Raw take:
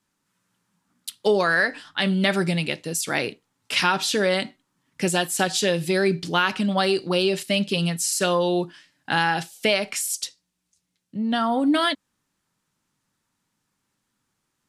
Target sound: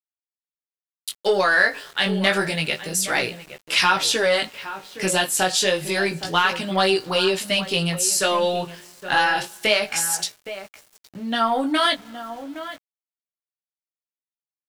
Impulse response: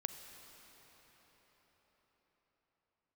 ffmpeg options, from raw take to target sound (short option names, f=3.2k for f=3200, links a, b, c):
-filter_complex "[0:a]asplit=2[a][b];[b]asoftclip=type=tanh:threshold=-16.5dB,volume=-6dB[c];[a][c]amix=inputs=2:normalize=0,equalizer=f=220:t=o:w=1.7:g=-9.5,asplit=2[d][e];[e]adelay=816.3,volume=-12dB,highshelf=f=4k:g=-18.4[f];[d][f]amix=inputs=2:normalize=0,asplit=2[g][h];[1:a]atrim=start_sample=2205,asetrate=48510,aresample=44100[i];[h][i]afir=irnorm=-1:irlink=0,volume=-15.5dB[j];[g][j]amix=inputs=2:normalize=0,flanger=delay=15.5:depth=6.3:speed=0.28,aeval=exprs='val(0)*gte(abs(val(0)),0.00531)':c=same,volume=3dB"